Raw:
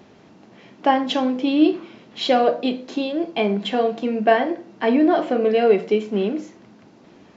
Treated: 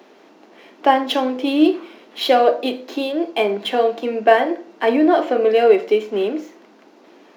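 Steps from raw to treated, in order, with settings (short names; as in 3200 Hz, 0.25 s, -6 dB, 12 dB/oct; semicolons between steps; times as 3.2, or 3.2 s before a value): median filter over 5 samples; HPF 290 Hz 24 dB/oct; gain +3.5 dB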